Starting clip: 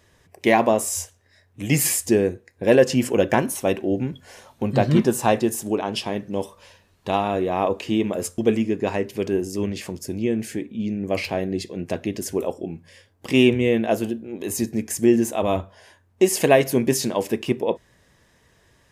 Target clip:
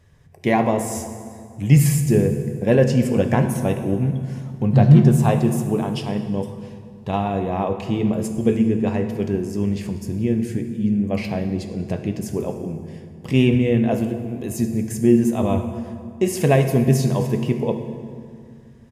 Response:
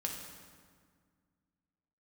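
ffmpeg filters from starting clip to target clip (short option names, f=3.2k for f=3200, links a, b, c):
-filter_complex "[0:a]firequalizer=gain_entry='entry(130,0);entry(310,-10);entry(3600,-14)':delay=0.05:min_phase=1,asplit=2[a][b];[1:a]atrim=start_sample=2205,asetrate=35280,aresample=44100[c];[b][c]afir=irnorm=-1:irlink=0,volume=-1dB[d];[a][d]amix=inputs=2:normalize=0,volume=2.5dB"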